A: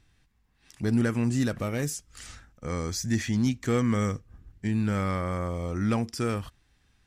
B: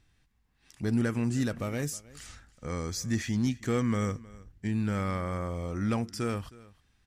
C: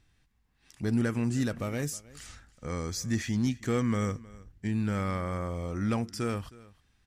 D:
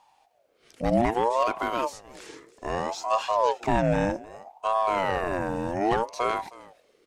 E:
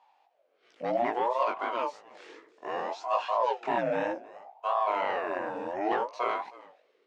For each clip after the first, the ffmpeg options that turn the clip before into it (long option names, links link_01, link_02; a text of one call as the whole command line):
ffmpeg -i in.wav -af "aecho=1:1:315:0.0891,volume=-3dB" out.wav
ffmpeg -i in.wav -af anull out.wav
ffmpeg -i in.wav -filter_complex "[0:a]acrossover=split=4700[link_01][link_02];[link_02]acompressor=threshold=-56dB:ratio=4:attack=1:release=60[link_03];[link_01][link_03]amix=inputs=2:normalize=0,aeval=exprs='val(0)*sin(2*PI*630*n/s+630*0.4/0.63*sin(2*PI*0.63*n/s))':channel_layout=same,volume=7.5dB" out.wav
ffmpeg -i in.wav -af "flanger=delay=15.5:depth=7.1:speed=2.9,highpass=370,lowpass=3400" out.wav